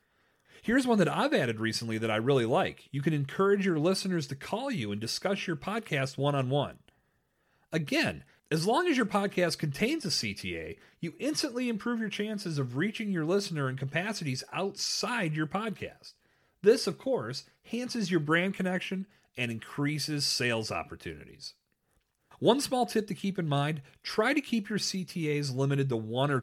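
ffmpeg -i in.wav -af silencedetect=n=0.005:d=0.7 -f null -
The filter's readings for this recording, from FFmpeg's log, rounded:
silence_start: 6.88
silence_end: 7.73 | silence_duration: 0.84
silence_start: 21.50
silence_end: 22.32 | silence_duration: 0.81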